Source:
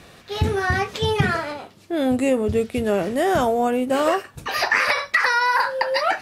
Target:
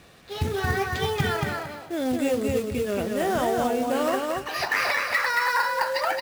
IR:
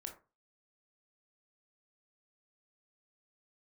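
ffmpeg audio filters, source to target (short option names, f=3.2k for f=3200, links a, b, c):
-filter_complex "[0:a]asettb=1/sr,asplit=3[a][b][c];[a]atrim=end=2.354[d];[b]atrim=start=2.35:end=2.98,asetpts=PTS-STARTPTS,afade=t=in:d=0.004:c=qsin,afade=t=out:st=0.626:d=0.004:c=qsin,equalizer=f=810:t=o:w=0.33:g=-13[e];[c]atrim=start=2.976[f];[d][e]acrossfade=d=0.004:c1=hsin:c2=qsin[g];[g][f]acrossfade=d=0.004:c1=qsin:c2=hsin,acrusher=bits=4:mode=log:mix=0:aa=0.000001,aecho=1:1:226|452|678:0.708|0.163|0.0375,volume=-6dB"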